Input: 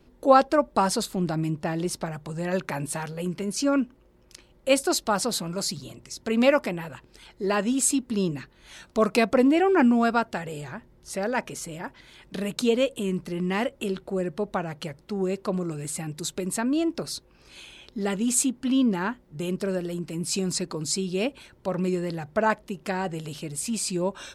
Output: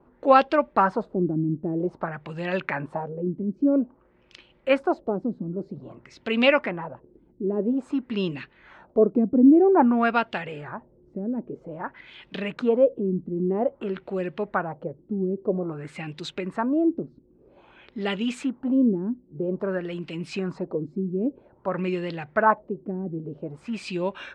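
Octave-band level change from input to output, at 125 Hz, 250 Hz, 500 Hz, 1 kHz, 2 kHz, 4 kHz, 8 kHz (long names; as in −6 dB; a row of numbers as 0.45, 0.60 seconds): −0.5 dB, +1.5 dB, +1.5 dB, +1.5 dB, +1.0 dB, −5.0 dB, below −20 dB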